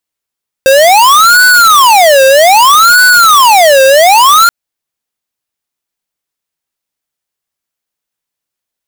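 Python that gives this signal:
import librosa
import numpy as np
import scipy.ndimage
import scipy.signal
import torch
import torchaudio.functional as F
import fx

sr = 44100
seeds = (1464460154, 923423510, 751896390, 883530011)

y = fx.siren(sr, length_s=3.83, kind='wail', low_hz=531.0, high_hz=1490.0, per_s=0.63, wave='square', level_db=-4.0)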